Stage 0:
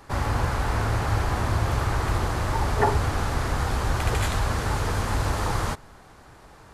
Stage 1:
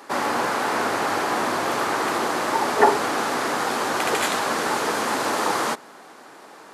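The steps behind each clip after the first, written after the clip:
high-pass filter 240 Hz 24 dB per octave
level +6.5 dB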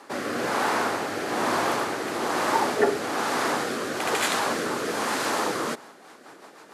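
rotating-speaker cabinet horn 1.1 Hz, later 7 Hz, at 0:05.51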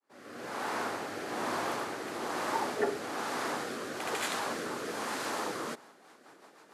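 fade in at the beginning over 0.82 s
level −9 dB

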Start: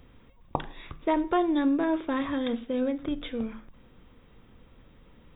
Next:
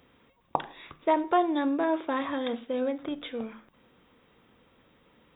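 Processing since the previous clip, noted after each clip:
high-pass filter 350 Hz 6 dB per octave
dynamic equaliser 760 Hz, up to +5 dB, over −44 dBFS, Q 1.3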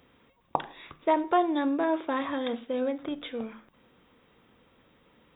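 no processing that can be heard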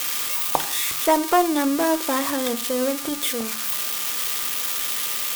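spike at every zero crossing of −19.5 dBFS
harmonic generator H 4 −25 dB, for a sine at −7.5 dBFS
steady tone 1,200 Hz −47 dBFS
level +5.5 dB

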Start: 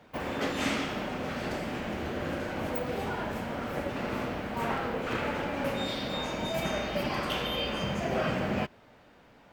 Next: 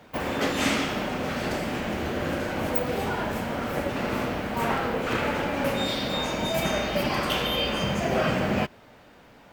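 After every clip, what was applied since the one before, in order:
high-shelf EQ 6,500 Hz +5.5 dB
level +5 dB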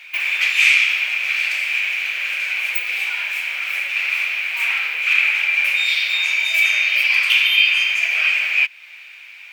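in parallel at +2.5 dB: downward compressor, threshold −35 dBFS, peak gain reduction 14.5 dB
on the sum: high-pass with resonance 2,400 Hz, resonance Q 11
level +1 dB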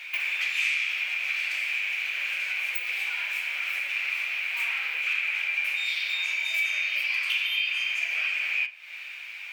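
downward compressor 2.5 to 1, threshold −31 dBFS, peak gain reduction 14 dB
convolution reverb RT60 0.40 s, pre-delay 8 ms, DRR 10 dB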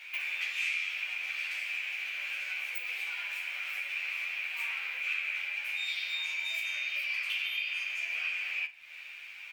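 surface crackle 110 per second −47 dBFS
double-tracking delay 12 ms −3 dB
level −8 dB

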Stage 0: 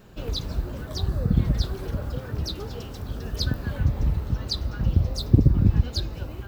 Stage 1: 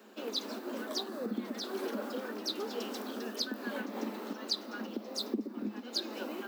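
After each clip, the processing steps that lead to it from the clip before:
downward compressor 6 to 1, threshold −23 dBFS, peak gain reduction 13 dB
Chebyshev high-pass filter 210 Hz, order 8
speech leveller 0.5 s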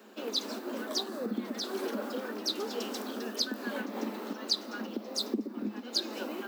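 dynamic equaliser 7,300 Hz, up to +4 dB, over −51 dBFS, Q 0.84
level +2 dB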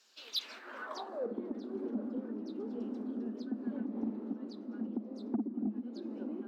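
band-pass filter sweep 5,400 Hz → 240 Hz, 0:00.08–0:01.68
soft clipping −29 dBFS, distortion −17 dB
level +3.5 dB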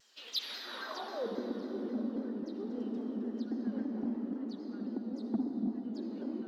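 hollow resonant body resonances 1,900/3,100 Hz, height 11 dB
convolution reverb RT60 3.3 s, pre-delay 53 ms, DRR 4 dB
pitch modulation by a square or saw wave saw down 3.7 Hz, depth 100 cents

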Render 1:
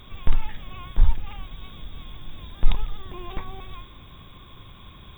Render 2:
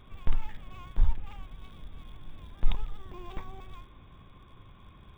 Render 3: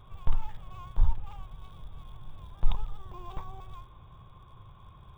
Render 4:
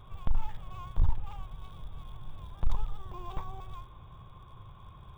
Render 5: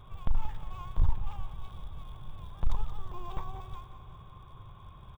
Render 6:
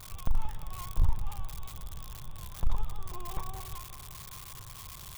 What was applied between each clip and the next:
adaptive Wiener filter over 9 samples; level −6.5 dB
octave-band graphic EQ 125/250/1,000/2,000 Hz +6/−10/+6/−9 dB
gain into a clipping stage and back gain 19 dB; level +1.5 dB
repeating echo 179 ms, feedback 59%, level −12 dB
spike at every zero crossing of −31 dBFS

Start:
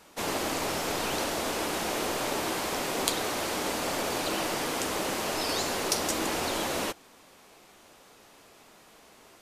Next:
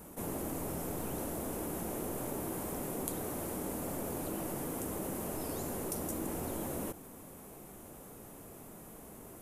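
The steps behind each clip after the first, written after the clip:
drawn EQ curve 160 Hz 0 dB, 4,600 Hz −25 dB, 11,000 Hz −2 dB
envelope flattener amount 50%
level −2 dB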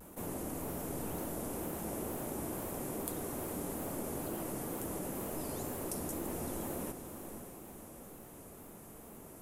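tape wow and flutter 79 cents
feedback delay with all-pass diffusion 522 ms, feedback 45%, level −8.5 dB
level −2 dB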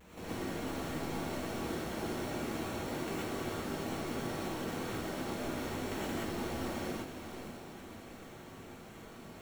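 sample-rate reduction 4,900 Hz, jitter 0%
reverb whose tail is shaped and stops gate 150 ms rising, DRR −6.5 dB
level −6 dB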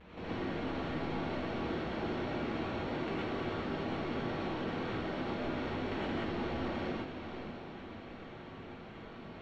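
low-pass filter 3,900 Hz 24 dB per octave
in parallel at −10 dB: soft clipping −39 dBFS, distortion −10 dB

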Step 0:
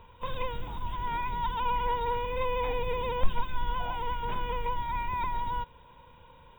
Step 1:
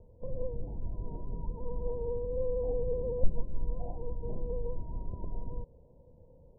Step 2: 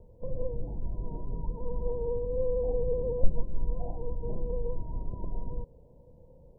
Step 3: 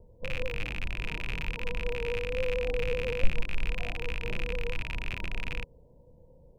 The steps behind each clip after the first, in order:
Butterworth low-pass 680 Hz 48 dB per octave
flanger 1.1 Hz, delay 5.2 ms, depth 1.8 ms, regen −76%; level +7 dB
loose part that buzzes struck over −43 dBFS, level −21 dBFS; level −1.5 dB

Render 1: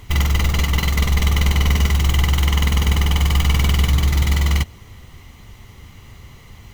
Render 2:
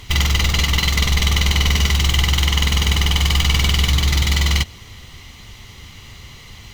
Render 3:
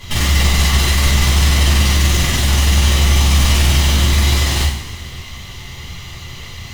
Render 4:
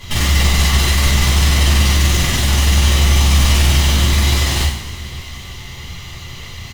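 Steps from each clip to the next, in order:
parametric band 4,100 Hz +10.5 dB 2 octaves; in parallel at +1 dB: brickwall limiter −9.5 dBFS, peak gain reduction 10 dB; on the sum: level −6 dB
sine wavefolder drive 13 dB, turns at −2 dBFS; flanger 0.45 Hz, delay 7.2 ms, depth 9.2 ms, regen −64%; coupled-rooms reverb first 0.59 s, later 2.5 s, from −17 dB, DRR −9.5 dB; level −15 dB
single-tap delay 841 ms −23 dB

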